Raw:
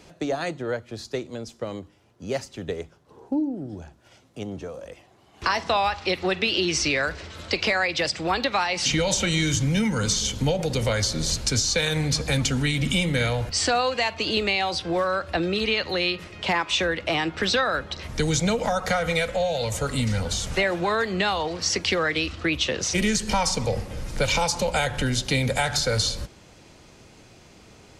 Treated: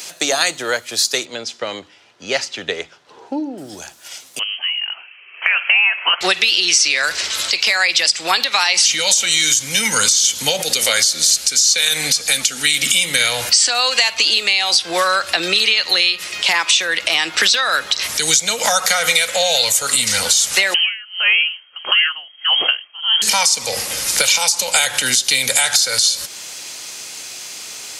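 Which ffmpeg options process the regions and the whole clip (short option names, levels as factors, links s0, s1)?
-filter_complex "[0:a]asettb=1/sr,asplit=3[s0][s1][s2];[s0]atrim=end=1.254[s3];[s1]atrim=start=1.25:end=3.58,asetpts=PTS-STARTPTS,afade=t=in:d=0.004:c=qsin,afade=t=out:st=2.326:d=0.004:c=qsin,lowpass=3300,bandreject=f=1100:w=15[s4];[s2]atrim=start=3.576[s5];[s3][s4]acrossfade=d=0.004:c1=hsin:c2=qsin[s6];[s6][s5]acrossfade=d=0.004:c1=qsin:c2=hsin,asettb=1/sr,asplit=3[s7][s8][s9];[s7]atrim=end=4.394[s10];[s8]atrim=start=4.39:end=6.21,asetpts=PTS-STARTPTS,afade=t=in:d=0.004:c=qsin,afade=t=out:st=1.816:d=0.004:c=qsin,highpass=650,lowpass=f=2900:t=q:w=0.5098,lowpass=f=2900:t=q:w=0.6013,lowpass=f=2900:t=q:w=0.9,lowpass=f=2900:t=q:w=2.563,afreqshift=-3400[s11];[s9]atrim=start=6.206[s12];[s10][s11]acrossfade=d=0.004:c1=hsin:c2=qsin[s13];[s13][s12]acrossfade=d=0.004:c1=qsin:c2=hsin,asettb=1/sr,asplit=3[s14][s15][s16];[s14]atrim=end=10.634[s17];[s15]atrim=start=10.63:end=12.93,asetpts=PTS-STARTPTS,afade=t=in:d=0.004:c=qsin,afade=t=out:st=2.296:d=0.004:c=qsin,equalizer=f=120:w=7.4:g=-14.5,bandreject=f=980:w=6.7[s18];[s16]atrim=start=12.926[s19];[s17][s18]acrossfade=d=0.004:c1=hsin:c2=qsin[s20];[s20][s19]acrossfade=d=0.004:c1=qsin:c2=hsin,asettb=1/sr,asplit=3[s21][s22][s23];[s21]atrim=end=20.744[s24];[s22]atrim=start=20.74:end=23.22,asetpts=PTS-STARTPTS,afade=t=in:d=0.004:c=qsin,afade=t=out:st=2.476:d=0.004:c=qsin,lowpass=f=2800:t=q:w=0.5098,lowpass=f=2800:t=q:w=0.6013,lowpass=f=2800:t=q:w=0.9,lowpass=f=2800:t=q:w=2.563,afreqshift=-3300,aeval=exprs='val(0)*pow(10,-32*(0.5-0.5*cos(2*PI*1.6*n/s))/20)':c=same[s25];[s23]atrim=start=23.216[s26];[s24][s25]acrossfade=d=0.004:c1=hsin:c2=qsin[s27];[s27][s26]acrossfade=d=0.004:c1=qsin:c2=hsin,aderivative,acompressor=threshold=0.01:ratio=6,alimiter=level_in=29.9:limit=0.891:release=50:level=0:latency=1,volume=0.891"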